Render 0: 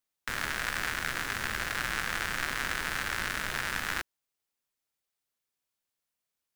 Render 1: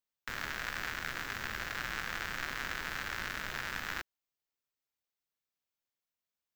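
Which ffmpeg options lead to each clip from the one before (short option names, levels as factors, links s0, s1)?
-af "equalizer=f=9600:w=3.2:g=-15,volume=0.531"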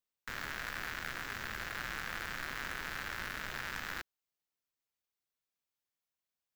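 -af "aeval=exprs='0.0531*(abs(mod(val(0)/0.0531+3,4)-2)-1)':c=same,volume=0.841"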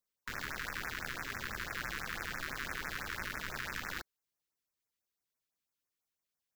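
-af "afftfilt=real='re*(1-between(b*sr/1024,610*pow(3800/610,0.5+0.5*sin(2*PI*6*pts/sr))/1.41,610*pow(3800/610,0.5+0.5*sin(2*PI*6*pts/sr))*1.41))':imag='im*(1-between(b*sr/1024,610*pow(3800/610,0.5+0.5*sin(2*PI*6*pts/sr))/1.41,610*pow(3800/610,0.5+0.5*sin(2*PI*6*pts/sr))*1.41))':win_size=1024:overlap=0.75,volume=1.19"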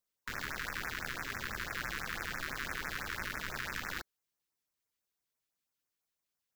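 -af "aeval=exprs='0.0668*(cos(1*acos(clip(val(0)/0.0668,-1,1)))-cos(1*PI/2))+0.00119*(cos(2*acos(clip(val(0)/0.0668,-1,1)))-cos(2*PI/2))':c=same,volume=1.12"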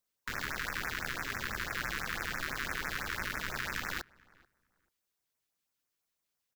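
-filter_complex "[0:a]asplit=2[s0][s1];[s1]adelay=436,lowpass=f=1700:p=1,volume=0.0668,asplit=2[s2][s3];[s3]adelay=436,lowpass=f=1700:p=1,volume=0.22[s4];[s0][s2][s4]amix=inputs=3:normalize=0,volume=1.33"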